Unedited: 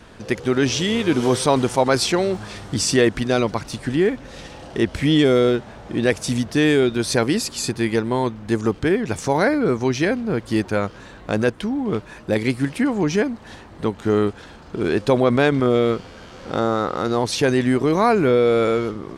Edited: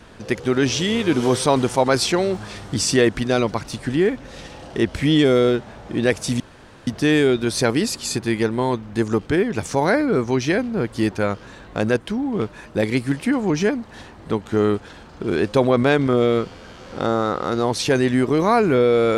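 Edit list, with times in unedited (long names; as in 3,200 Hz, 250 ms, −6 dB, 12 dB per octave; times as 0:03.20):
0:06.40: splice in room tone 0.47 s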